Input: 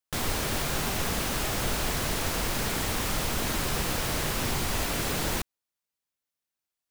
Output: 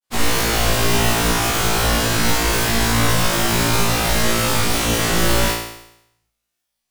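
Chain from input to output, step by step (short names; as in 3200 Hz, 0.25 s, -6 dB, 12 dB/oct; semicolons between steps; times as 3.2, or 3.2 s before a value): on a send at -18.5 dB: reverb RT60 0.65 s, pre-delay 8 ms; on the sum: grains; flutter echo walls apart 3 m, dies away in 0.8 s; gain +7 dB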